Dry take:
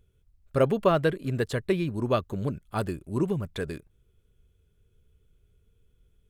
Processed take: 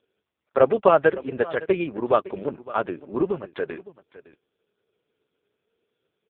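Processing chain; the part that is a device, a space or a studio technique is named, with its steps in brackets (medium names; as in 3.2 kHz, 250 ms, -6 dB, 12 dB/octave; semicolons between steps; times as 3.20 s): satellite phone (band-pass 400–3100 Hz; delay 560 ms -18 dB; trim +9 dB; AMR-NB 4.75 kbps 8 kHz)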